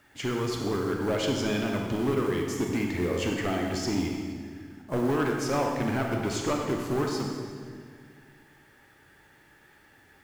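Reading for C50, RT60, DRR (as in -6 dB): 2.0 dB, 2.0 s, 0.5 dB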